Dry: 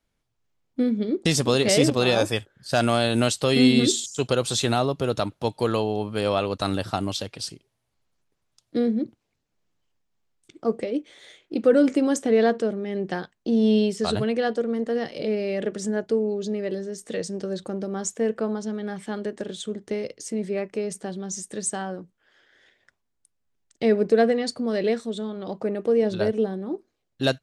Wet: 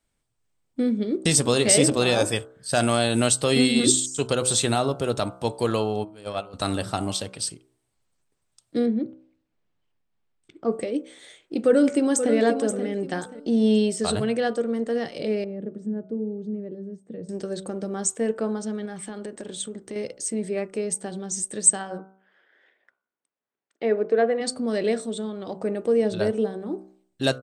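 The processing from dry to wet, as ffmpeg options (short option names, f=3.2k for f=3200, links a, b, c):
-filter_complex "[0:a]asplit=3[a][b][c];[a]afade=t=out:st=6.03:d=0.02[d];[b]agate=range=-20dB:threshold=-22dB:ratio=16:release=100:detection=peak,afade=t=in:st=6.03:d=0.02,afade=t=out:st=6.53:d=0.02[e];[c]afade=t=in:st=6.53:d=0.02[f];[d][e][f]amix=inputs=3:normalize=0,asettb=1/sr,asplit=3[g][h][i];[g]atrim=end=8.864[j];[h]atrim=start=8.86:end=10.72,asetpts=PTS-STARTPTS,afade=t=in:d=0.004:c=qsin,afade=t=out:st=1.856:d=0.004:c=qsin,lowpass=3.6k[k];[i]atrim=start=10.716[l];[j][k]acrossfade=d=0.004:c1=hsin:c2=qsin[m];[m][l]acrossfade=d=0.004:c1=qsin:c2=hsin,asplit=2[n][o];[o]afade=t=in:st=11.65:d=0.01,afade=t=out:st=12.33:d=0.01,aecho=0:1:530|1060|1590:0.354813|0.106444|0.0319332[p];[n][p]amix=inputs=2:normalize=0,asettb=1/sr,asplit=3[q][r][s];[q]atrim=end=15.444[t];[r]atrim=start=15.44:end=17.29,asetpts=PTS-STARTPTS,afade=t=in:d=0.004:c=qsin,afade=t=out:st=1.846:d=0.004:c=qsin,bandpass=f=180:t=q:w=1.2[u];[s]atrim=start=17.286[v];[t][u]acrossfade=d=0.004:c1=hsin:c2=qsin[w];[w][v]acrossfade=d=0.004:c1=qsin:c2=hsin,asettb=1/sr,asplit=3[x][y][z];[x]atrim=end=18.854[aa];[y]atrim=start=18.85:end=19.96,asetpts=PTS-STARTPTS,afade=t=in:d=0.004:c=qsin,afade=t=out:st=1.106:d=0.004:c=qsin,acompressor=threshold=-30dB:ratio=6:attack=3.2:release=140:knee=1:detection=peak[ab];[z]atrim=start=19.956[ac];[aa][ab]acrossfade=d=0.004:c1=hsin:c2=qsin[ad];[ad][ac]acrossfade=d=0.004:c1=qsin:c2=hsin,asplit=3[ae][af][ag];[ae]afade=t=out:st=21.97:d=0.02[ah];[af]highpass=340,lowpass=2.2k,afade=t=in:st=21.97:d=0.02,afade=t=out:st=24.4:d=0.02[ai];[ag]afade=t=in:st=24.4:d=0.02[aj];[ah][ai][aj]amix=inputs=3:normalize=0,equalizer=f=8.3k:w=6.3:g=14.5,bandreject=f=63.71:t=h:w=4,bandreject=f=127.42:t=h:w=4,bandreject=f=191.13:t=h:w=4,bandreject=f=254.84:t=h:w=4,bandreject=f=318.55:t=h:w=4,bandreject=f=382.26:t=h:w=4,bandreject=f=445.97:t=h:w=4,bandreject=f=509.68:t=h:w=4,bandreject=f=573.39:t=h:w=4,bandreject=f=637.1:t=h:w=4,bandreject=f=700.81:t=h:w=4,bandreject=f=764.52:t=h:w=4,bandreject=f=828.23:t=h:w=4,bandreject=f=891.94:t=h:w=4,bandreject=f=955.65:t=h:w=4,bandreject=f=1.01936k:t=h:w=4,bandreject=f=1.08307k:t=h:w=4,bandreject=f=1.14678k:t=h:w=4,bandreject=f=1.21049k:t=h:w=4,bandreject=f=1.2742k:t=h:w=4,bandreject=f=1.33791k:t=h:w=4,bandreject=f=1.40162k:t=h:w=4,bandreject=f=1.46533k:t=h:w=4,bandreject=f=1.52904k:t=h:w=4"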